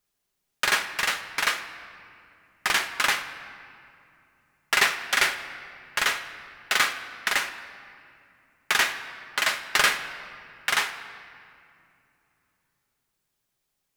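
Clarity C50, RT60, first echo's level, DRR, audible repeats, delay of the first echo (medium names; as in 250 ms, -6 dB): 10.5 dB, 2.6 s, no echo, 5.5 dB, no echo, no echo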